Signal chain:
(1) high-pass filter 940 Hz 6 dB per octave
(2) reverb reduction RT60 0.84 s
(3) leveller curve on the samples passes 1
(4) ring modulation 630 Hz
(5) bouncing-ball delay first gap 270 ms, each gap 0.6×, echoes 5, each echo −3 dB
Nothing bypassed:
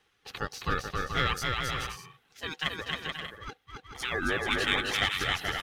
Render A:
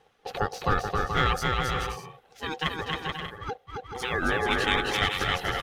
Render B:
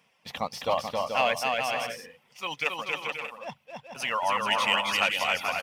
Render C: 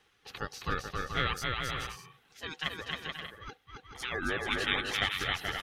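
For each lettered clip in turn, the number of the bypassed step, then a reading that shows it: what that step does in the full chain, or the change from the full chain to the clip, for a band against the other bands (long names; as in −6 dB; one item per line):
1, 8 kHz band −5.0 dB
4, 125 Hz band −11.5 dB
3, change in crest factor +2.5 dB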